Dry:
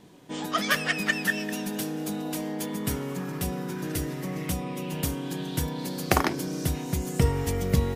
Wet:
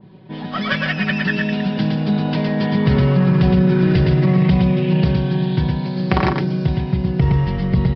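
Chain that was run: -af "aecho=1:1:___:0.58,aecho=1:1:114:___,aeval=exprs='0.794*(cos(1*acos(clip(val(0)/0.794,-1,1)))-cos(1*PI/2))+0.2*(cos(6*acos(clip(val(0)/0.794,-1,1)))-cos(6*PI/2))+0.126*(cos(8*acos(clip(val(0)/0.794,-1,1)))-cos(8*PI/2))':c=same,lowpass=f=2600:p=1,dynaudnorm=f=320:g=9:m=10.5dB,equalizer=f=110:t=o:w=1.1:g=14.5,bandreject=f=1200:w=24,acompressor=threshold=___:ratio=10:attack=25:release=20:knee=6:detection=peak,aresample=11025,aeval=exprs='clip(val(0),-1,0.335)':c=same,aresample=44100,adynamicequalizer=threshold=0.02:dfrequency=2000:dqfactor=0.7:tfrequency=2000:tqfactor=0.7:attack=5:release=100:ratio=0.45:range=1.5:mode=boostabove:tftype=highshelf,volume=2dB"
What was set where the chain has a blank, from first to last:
5.3, 0.631, -16dB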